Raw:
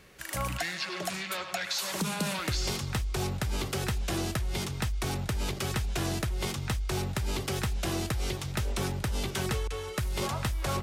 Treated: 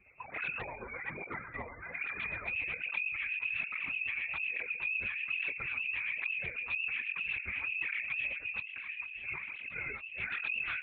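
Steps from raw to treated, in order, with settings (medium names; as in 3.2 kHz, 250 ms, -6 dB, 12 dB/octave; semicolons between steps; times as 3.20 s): spectral gate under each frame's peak -30 dB strong; frequency inversion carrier 2.6 kHz; loudest bins only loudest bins 32; rotary cabinet horn 8 Hz; wow and flutter 16 cents; wavefolder -28.5 dBFS; 8.60–10.20 s: compressor with a negative ratio -41 dBFS, ratio -1; LPC vocoder at 8 kHz whisper; cancelling through-zero flanger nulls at 1.2 Hz, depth 7.1 ms; trim +1.5 dB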